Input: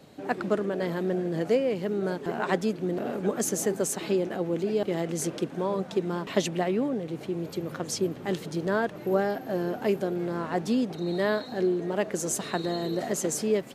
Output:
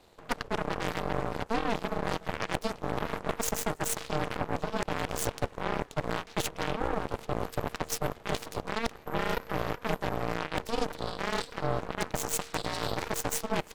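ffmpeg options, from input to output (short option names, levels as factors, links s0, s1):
-af "lowshelf=f=310:g=-8,areverse,acompressor=threshold=0.0224:ratio=12,areverse,aeval=exprs='val(0)*sin(2*PI*230*n/s)':c=same,aeval=exprs='0.0562*(cos(1*acos(clip(val(0)/0.0562,-1,1)))-cos(1*PI/2))+0.00891*(cos(5*acos(clip(val(0)/0.0562,-1,1)))-cos(5*PI/2))+0.0126*(cos(6*acos(clip(val(0)/0.0562,-1,1)))-cos(6*PI/2))+0.0178*(cos(7*acos(clip(val(0)/0.0562,-1,1)))-cos(7*PI/2))':c=same,volume=2.11"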